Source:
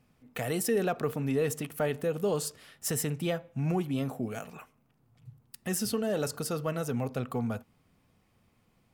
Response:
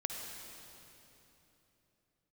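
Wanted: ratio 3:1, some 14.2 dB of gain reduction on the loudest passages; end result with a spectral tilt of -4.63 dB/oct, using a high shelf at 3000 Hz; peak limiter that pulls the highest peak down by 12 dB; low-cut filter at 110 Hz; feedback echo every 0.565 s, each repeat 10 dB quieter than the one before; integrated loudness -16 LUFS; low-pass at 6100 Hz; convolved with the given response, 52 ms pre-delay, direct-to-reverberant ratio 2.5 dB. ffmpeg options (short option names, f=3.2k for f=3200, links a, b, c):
-filter_complex "[0:a]highpass=110,lowpass=6.1k,highshelf=f=3k:g=7.5,acompressor=threshold=-44dB:ratio=3,alimiter=level_in=13.5dB:limit=-24dB:level=0:latency=1,volume=-13.5dB,aecho=1:1:565|1130|1695|2260:0.316|0.101|0.0324|0.0104,asplit=2[a][b];[1:a]atrim=start_sample=2205,adelay=52[c];[b][c]afir=irnorm=-1:irlink=0,volume=-4dB[d];[a][d]amix=inputs=2:normalize=0,volume=29.5dB"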